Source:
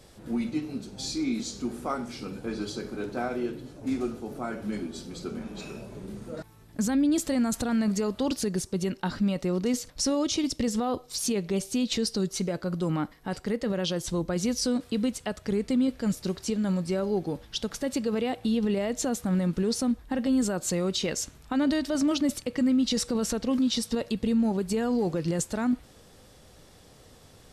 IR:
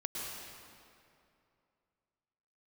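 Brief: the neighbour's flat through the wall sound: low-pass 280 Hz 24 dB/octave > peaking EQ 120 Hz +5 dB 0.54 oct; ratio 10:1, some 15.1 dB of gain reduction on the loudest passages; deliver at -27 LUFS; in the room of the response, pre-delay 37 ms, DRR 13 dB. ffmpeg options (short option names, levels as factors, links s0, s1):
-filter_complex "[0:a]acompressor=threshold=0.0141:ratio=10,asplit=2[s0][s1];[1:a]atrim=start_sample=2205,adelay=37[s2];[s1][s2]afir=irnorm=-1:irlink=0,volume=0.168[s3];[s0][s3]amix=inputs=2:normalize=0,lowpass=f=280:w=0.5412,lowpass=f=280:w=1.3066,equalizer=f=120:t=o:w=0.54:g=5,volume=7.08"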